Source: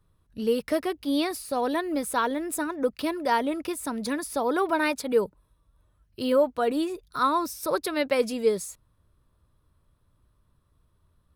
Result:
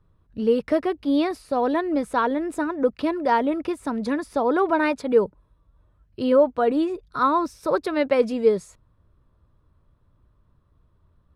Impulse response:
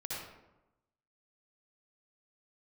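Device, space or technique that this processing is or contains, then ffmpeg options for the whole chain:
through cloth: -af "lowpass=8500,highshelf=frequency=3000:gain=-14,volume=5dB"

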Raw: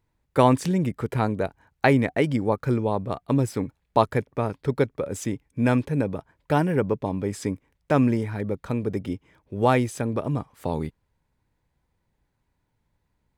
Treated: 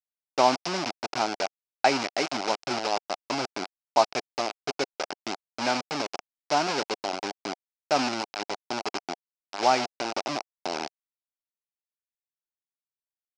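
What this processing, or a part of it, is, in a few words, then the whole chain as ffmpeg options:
hand-held game console: -af "acrusher=bits=3:mix=0:aa=0.000001,highpass=460,equalizer=frequency=480:width_type=q:width=4:gain=-10,equalizer=frequency=730:width_type=q:width=4:gain=5,equalizer=frequency=1100:width_type=q:width=4:gain=-4,equalizer=frequency=1800:width_type=q:width=4:gain=-8,equalizer=frequency=3400:width_type=q:width=4:gain=-5,equalizer=frequency=5200:width_type=q:width=4:gain=7,lowpass=frequency=5900:width=0.5412,lowpass=frequency=5900:width=1.3066"

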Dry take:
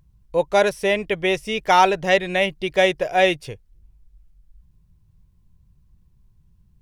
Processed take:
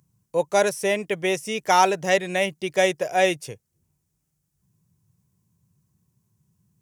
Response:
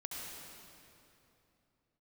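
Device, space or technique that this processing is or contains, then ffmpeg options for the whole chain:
budget condenser microphone: -af "highpass=frequency=110:width=0.5412,highpass=frequency=110:width=1.3066,highshelf=frequency=5100:width_type=q:width=1.5:gain=8,volume=-2.5dB"

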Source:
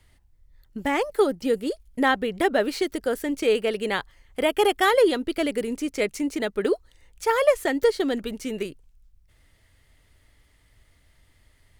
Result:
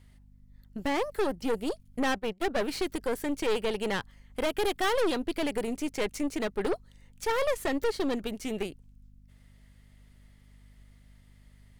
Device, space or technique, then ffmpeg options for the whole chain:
valve amplifier with mains hum: -filter_complex "[0:a]aeval=exprs='(tanh(15.8*val(0)+0.65)-tanh(0.65))/15.8':channel_layout=same,aeval=exprs='val(0)+0.00178*(sin(2*PI*50*n/s)+sin(2*PI*2*50*n/s)/2+sin(2*PI*3*50*n/s)/3+sin(2*PI*4*50*n/s)/4+sin(2*PI*5*50*n/s)/5)':channel_layout=same,asplit=3[link_01][link_02][link_03];[link_01]afade=type=out:start_time=2.13:duration=0.02[link_04];[link_02]agate=range=-19dB:threshold=-29dB:ratio=16:detection=peak,afade=type=in:start_time=2.13:duration=0.02,afade=type=out:start_time=2.69:duration=0.02[link_05];[link_03]afade=type=in:start_time=2.69:duration=0.02[link_06];[link_04][link_05][link_06]amix=inputs=3:normalize=0"

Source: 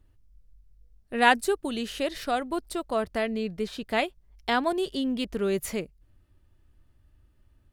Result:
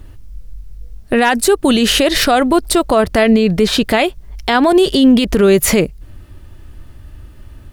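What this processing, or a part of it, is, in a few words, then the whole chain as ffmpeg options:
loud club master: -af "acompressor=threshold=-28dB:ratio=2,asoftclip=type=hard:threshold=-16dB,alimiter=level_in=27dB:limit=-1dB:release=50:level=0:latency=1,volume=-2dB"

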